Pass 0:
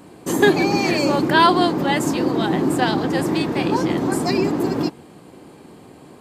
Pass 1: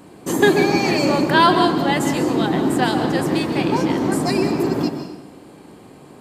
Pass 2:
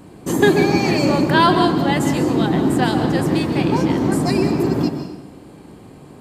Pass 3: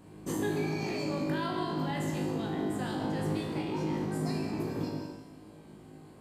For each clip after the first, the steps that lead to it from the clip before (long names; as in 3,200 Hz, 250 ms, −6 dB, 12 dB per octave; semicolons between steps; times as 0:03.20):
dense smooth reverb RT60 0.93 s, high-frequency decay 0.8×, pre-delay 115 ms, DRR 7 dB
low-shelf EQ 150 Hz +11.5 dB; level −1 dB
brickwall limiter −11 dBFS, peak gain reduction 9 dB; speech leveller 0.5 s; tuned comb filter 52 Hz, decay 0.88 s, harmonics all, mix 90%; level −3 dB